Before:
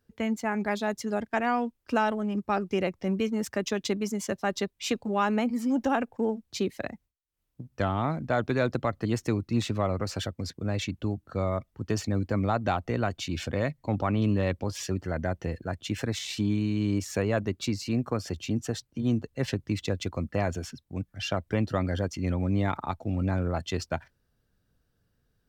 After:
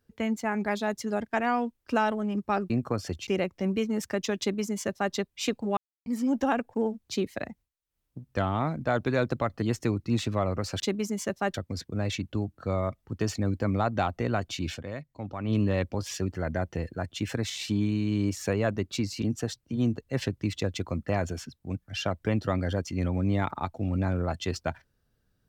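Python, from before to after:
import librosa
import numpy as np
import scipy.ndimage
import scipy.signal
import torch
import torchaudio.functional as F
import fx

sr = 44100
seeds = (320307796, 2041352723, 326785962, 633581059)

y = fx.edit(x, sr, fx.duplicate(start_s=3.82, length_s=0.74, to_s=10.23),
    fx.silence(start_s=5.2, length_s=0.29),
    fx.fade_down_up(start_s=13.4, length_s=0.81, db=-9.0, fade_s=0.15, curve='qua'),
    fx.move(start_s=17.91, length_s=0.57, to_s=2.7), tone=tone)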